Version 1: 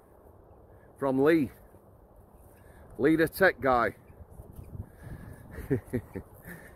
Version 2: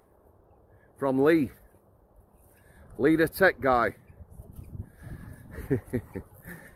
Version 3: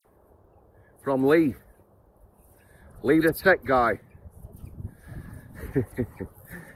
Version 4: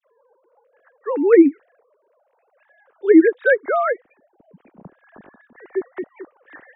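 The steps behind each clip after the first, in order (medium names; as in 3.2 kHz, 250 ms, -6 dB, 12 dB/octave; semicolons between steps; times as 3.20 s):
spectral noise reduction 6 dB; trim +1.5 dB
phase dispersion lows, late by 51 ms, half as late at 2.9 kHz; trim +2 dB
formants replaced by sine waves; trim +6.5 dB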